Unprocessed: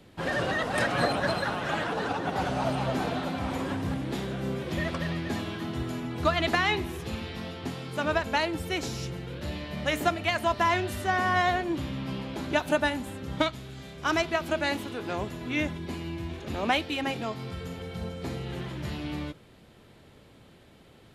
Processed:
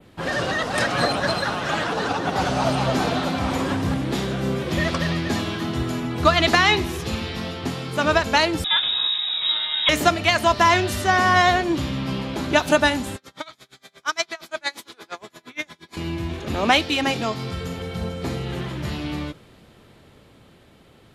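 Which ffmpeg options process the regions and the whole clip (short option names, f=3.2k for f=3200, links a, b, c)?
-filter_complex "[0:a]asettb=1/sr,asplit=3[a][b][c];[a]atrim=end=8.644[d];[b]atrim=start=8.64:end=9.89,asetpts=PTS-STARTPTS,afade=t=in:d=0.004:c=qsin,afade=t=out:st=1.246:d=0.004:c=qsin,lowpass=f=3.3k:t=q:w=0.5098,lowpass=f=3.3k:t=q:w=0.6013,lowpass=f=3.3k:t=q:w=0.9,lowpass=f=3.3k:t=q:w=2.563,afreqshift=-3900,asplit=2[e][f];[f]adelay=30,volume=-13dB[g];[e][g]amix=inputs=2:normalize=0,atrim=end_sample=55125[h];[c]atrim=start=9.886[i];[d][h]acrossfade=d=0.004:c1=hsin:c2=qsin[j];[j][i]acrossfade=d=0.004:c1=qsin:c2=hsin,asettb=1/sr,asplit=3[k][l][m];[k]atrim=end=13.164[n];[l]atrim=start=13.16:end=15.97,asetpts=PTS-STARTPTS,afade=t=in:d=0.004:c=qsin,afade=t=out:st=2.806:d=0.004:c=qsin,highpass=f=1.2k:p=1,bandreject=f=2.8k:w=6.9,aeval=exprs='val(0)*pow(10,-29*(0.5-0.5*cos(2*PI*8.6*n/s))/20)':c=same[o];[m]atrim=start=15.966[p];[n][o]acrossfade=d=0.004:c1=hsin:c2=qsin[q];[q][p]acrossfade=d=0.004:c1=qsin:c2=hsin,adynamicequalizer=threshold=0.00398:dfrequency=5500:dqfactor=0.98:tfrequency=5500:tqfactor=0.98:attack=5:release=100:ratio=0.375:range=3.5:mode=boostabove:tftype=bell,dynaudnorm=f=210:g=21:m=4dB,equalizer=f=1.2k:t=o:w=0.29:g=2.5,volume=3.5dB"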